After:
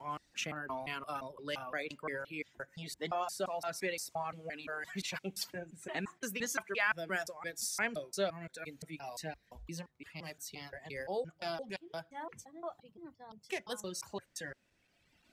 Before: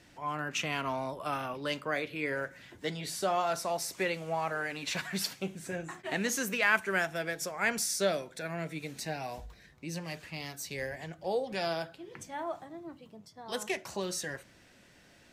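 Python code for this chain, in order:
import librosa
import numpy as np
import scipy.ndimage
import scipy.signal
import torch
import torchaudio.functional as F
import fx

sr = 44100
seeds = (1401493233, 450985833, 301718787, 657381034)

y = fx.block_reorder(x, sr, ms=173.0, group=2)
y = fx.dereverb_blind(y, sr, rt60_s=1.8)
y = y * librosa.db_to_amplitude(-4.5)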